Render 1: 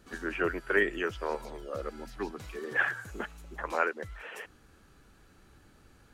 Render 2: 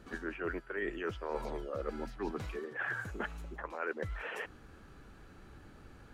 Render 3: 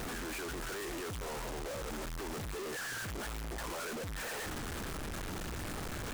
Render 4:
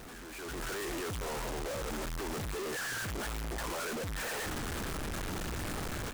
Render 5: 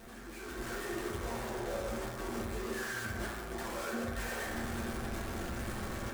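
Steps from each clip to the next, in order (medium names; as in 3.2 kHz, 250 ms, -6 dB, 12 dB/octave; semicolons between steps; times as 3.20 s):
reverse; compression 12:1, threshold -38 dBFS, peak gain reduction 18 dB; reverse; treble shelf 4 kHz -11 dB; trim +5 dB
one-bit comparator; delay time shaken by noise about 5.2 kHz, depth 0.047 ms; trim +1 dB
level rider gain up to 11.5 dB; trim -8.5 dB
reverberation RT60 1.5 s, pre-delay 4 ms, DRR -4 dB; trim -7 dB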